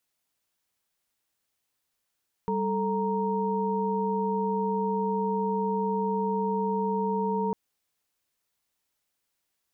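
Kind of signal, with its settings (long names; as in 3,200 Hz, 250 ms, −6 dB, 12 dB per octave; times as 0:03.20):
held notes G3/A4/A#5 sine, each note −29 dBFS 5.05 s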